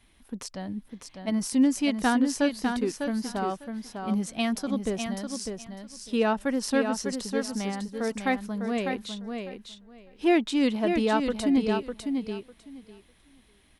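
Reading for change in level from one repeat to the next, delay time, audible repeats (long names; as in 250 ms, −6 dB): −16.0 dB, 601 ms, 2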